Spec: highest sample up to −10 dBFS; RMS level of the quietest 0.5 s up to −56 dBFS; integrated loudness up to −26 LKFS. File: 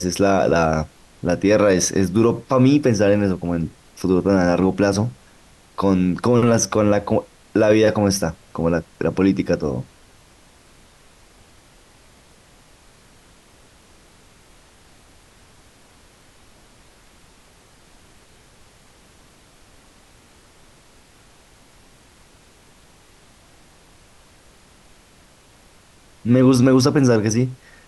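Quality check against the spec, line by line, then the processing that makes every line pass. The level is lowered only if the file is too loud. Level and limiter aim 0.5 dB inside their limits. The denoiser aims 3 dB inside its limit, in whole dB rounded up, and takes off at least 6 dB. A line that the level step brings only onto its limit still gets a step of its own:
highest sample −5.5 dBFS: out of spec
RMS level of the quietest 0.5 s −51 dBFS: out of spec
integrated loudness −18.5 LKFS: out of spec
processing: level −8 dB

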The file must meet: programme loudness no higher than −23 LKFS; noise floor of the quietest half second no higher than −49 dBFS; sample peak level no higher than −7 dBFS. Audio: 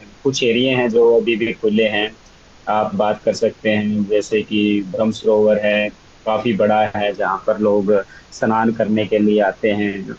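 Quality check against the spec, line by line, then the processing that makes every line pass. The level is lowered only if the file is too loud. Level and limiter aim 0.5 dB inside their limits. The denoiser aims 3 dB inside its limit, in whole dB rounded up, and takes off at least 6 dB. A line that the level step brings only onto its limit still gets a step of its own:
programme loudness −17.0 LKFS: out of spec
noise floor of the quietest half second −45 dBFS: out of spec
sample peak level −5.5 dBFS: out of spec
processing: level −6.5 dB

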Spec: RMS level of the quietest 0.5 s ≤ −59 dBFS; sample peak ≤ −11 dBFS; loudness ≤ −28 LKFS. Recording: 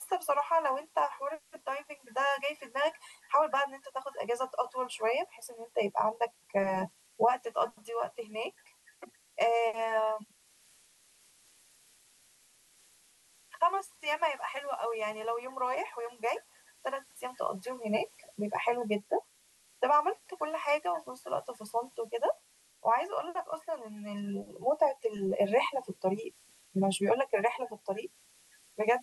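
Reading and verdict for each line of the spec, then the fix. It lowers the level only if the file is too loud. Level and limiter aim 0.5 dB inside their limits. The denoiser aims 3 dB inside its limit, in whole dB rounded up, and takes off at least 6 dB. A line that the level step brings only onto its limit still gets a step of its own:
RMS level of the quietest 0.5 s −65 dBFS: in spec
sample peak −15.0 dBFS: in spec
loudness −33.0 LKFS: in spec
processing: no processing needed

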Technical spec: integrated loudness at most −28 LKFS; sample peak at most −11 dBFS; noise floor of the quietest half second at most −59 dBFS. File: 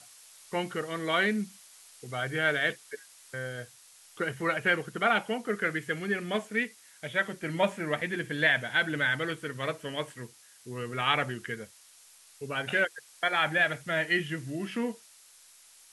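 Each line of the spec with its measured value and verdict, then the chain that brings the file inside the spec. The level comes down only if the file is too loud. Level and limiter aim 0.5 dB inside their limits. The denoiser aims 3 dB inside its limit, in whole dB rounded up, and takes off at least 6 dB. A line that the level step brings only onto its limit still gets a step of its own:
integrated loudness −30.0 LKFS: in spec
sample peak −12.0 dBFS: in spec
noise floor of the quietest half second −57 dBFS: out of spec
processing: broadband denoise 6 dB, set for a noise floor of −57 dBFS

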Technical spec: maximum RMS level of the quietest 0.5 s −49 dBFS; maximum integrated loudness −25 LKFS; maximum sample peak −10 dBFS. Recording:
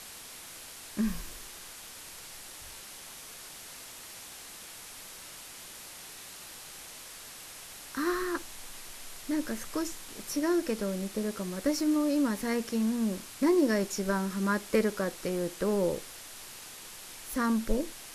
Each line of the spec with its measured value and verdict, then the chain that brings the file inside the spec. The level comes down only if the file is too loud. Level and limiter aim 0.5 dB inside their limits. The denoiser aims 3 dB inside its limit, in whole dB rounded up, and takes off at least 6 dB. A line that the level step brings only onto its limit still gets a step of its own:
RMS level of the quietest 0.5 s −47 dBFS: out of spec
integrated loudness −31.0 LKFS: in spec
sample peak −14.0 dBFS: in spec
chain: broadband denoise 6 dB, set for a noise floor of −47 dBFS

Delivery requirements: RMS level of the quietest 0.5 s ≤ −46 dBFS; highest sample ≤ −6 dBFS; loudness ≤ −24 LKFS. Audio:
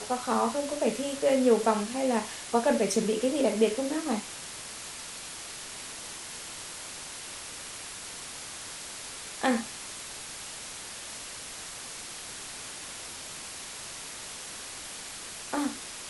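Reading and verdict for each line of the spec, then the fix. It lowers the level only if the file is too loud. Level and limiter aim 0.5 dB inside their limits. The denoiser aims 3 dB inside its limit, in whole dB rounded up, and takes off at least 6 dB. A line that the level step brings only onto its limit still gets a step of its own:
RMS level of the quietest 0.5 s −41 dBFS: out of spec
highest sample −10.5 dBFS: in spec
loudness −32.0 LKFS: in spec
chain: broadband denoise 8 dB, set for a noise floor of −41 dBFS

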